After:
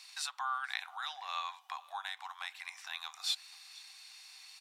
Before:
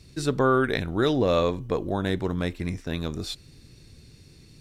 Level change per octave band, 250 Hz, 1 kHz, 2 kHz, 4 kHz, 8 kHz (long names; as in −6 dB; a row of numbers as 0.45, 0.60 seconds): below −40 dB, −8.5 dB, −8.0 dB, −3.0 dB, −1.5 dB